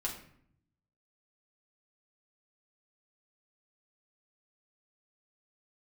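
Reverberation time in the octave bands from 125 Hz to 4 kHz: 1.2, 1.0, 0.65, 0.60, 0.60, 0.45 seconds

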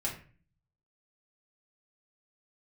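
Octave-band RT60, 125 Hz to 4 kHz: 0.85, 0.70, 0.40, 0.40, 0.45, 0.30 seconds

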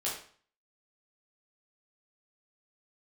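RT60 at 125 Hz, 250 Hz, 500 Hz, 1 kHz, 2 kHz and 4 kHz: 0.55, 0.45, 0.45, 0.50, 0.45, 0.45 seconds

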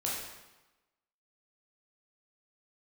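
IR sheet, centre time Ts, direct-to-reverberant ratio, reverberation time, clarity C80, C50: 69 ms, −5.0 dB, 1.1 s, 3.5 dB, 0.5 dB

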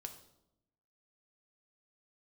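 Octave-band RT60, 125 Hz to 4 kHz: 1.1, 1.1, 0.90, 0.75, 0.55, 0.60 seconds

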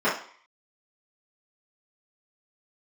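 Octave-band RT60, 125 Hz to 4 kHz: 0.35, 0.40, 0.45, 0.55, 0.50, 0.55 seconds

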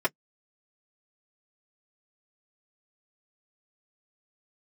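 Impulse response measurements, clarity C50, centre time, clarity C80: 50.5 dB, 5 ms, 60.0 dB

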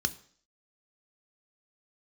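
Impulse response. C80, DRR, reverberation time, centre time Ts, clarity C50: 22.0 dB, 10.5 dB, 0.55 s, 3 ms, 19.0 dB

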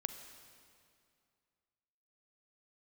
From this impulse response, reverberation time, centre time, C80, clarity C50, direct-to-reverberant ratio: 2.3 s, 27 ms, 9.5 dB, 8.5 dB, 8.0 dB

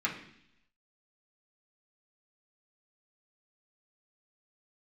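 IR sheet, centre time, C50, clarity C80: 22 ms, 8.0 dB, 11.5 dB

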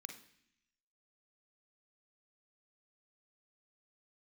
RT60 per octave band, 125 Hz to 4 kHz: 0.95, 0.95, 0.65, 0.65, 0.95, 0.95 seconds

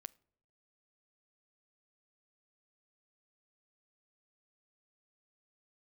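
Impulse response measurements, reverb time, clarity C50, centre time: non-exponential decay, 25.0 dB, 2 ms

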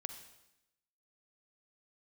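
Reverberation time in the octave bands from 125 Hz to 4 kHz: 0.95, 1.0, 0.90, 0.85, 0.90, 0.90 seconds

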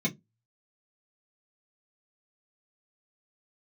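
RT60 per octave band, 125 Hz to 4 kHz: 0.30, 0.25, 0.20, 0.15, 0.10, 0.10 seconds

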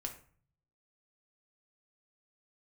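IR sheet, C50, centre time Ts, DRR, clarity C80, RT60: 10.5 dB, 13 ms, 2.5 dB, 14.5 dB, 0.45 s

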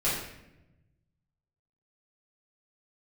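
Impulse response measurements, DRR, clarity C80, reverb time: −11.0 dB, 4.5 dB, 0.90 s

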